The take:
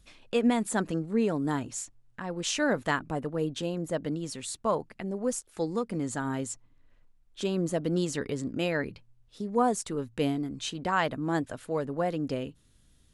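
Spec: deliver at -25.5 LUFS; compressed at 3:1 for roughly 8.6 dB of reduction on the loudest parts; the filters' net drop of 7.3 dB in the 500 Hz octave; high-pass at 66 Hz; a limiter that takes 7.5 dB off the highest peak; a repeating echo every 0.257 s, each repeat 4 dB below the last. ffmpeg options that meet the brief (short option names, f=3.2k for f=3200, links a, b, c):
-af "highpass=66,equalizer=f=500:t=o:g=-9,acompressor=threshold=-33dB:ratio=3,alimiter=level_in=5dB:limit=-24dB:level=0:latency=1,volume=-5dB,aecho=1:1:257|514|771|1028|1285|1542|1799|2056|2313:0.631|0.398|0.25|0.158|0.0994|0.0626|0.0394|0.0249|0.0157,volume=12dB"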